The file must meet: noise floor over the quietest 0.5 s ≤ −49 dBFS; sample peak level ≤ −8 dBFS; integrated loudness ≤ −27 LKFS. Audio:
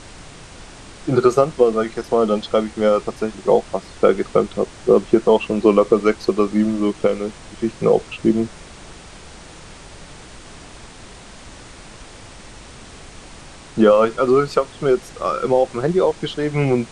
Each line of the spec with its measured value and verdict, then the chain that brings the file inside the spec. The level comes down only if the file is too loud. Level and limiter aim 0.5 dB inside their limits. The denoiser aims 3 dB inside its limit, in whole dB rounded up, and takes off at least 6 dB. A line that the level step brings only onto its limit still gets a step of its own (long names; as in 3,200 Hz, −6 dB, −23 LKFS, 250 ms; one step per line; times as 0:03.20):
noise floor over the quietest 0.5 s −40 dBFS: out of spec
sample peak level −1.5 dBFS: out of spec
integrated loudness −18.5 LKFS: out of spec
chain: broadband denoise 6 dB, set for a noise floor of −40 dBFS
level −9 dB